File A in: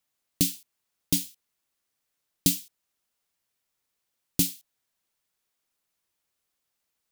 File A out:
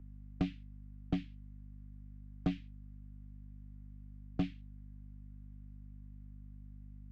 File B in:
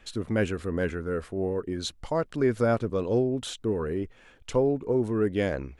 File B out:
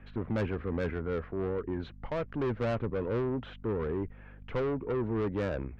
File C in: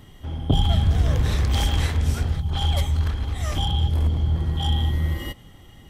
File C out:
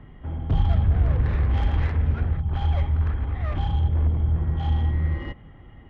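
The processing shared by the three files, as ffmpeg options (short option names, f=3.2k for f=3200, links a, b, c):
-filter_complex "[0:a]aeval=exprs='val(0)+0.00355*(sin(2*PI*50*n/s)+sin(2*PI*2*50*n/s)/2+sin(2*PI*3*50*n/s)/3+sin(2*PI*4*50*n/s)/4+sin(2*PI*5*50*n/s)/5)':c=same,lowpass=f=2.2k:w=0.5412,lowpass=f=2.2k:w=1.3066,acrossover=split=120[a][b];[b]asoftclip=type=tanh:threshold=-28dB[c];[a][c]amix=inputs=2:normalize=0" -ar 48000 -c:a libopus -b:a 64k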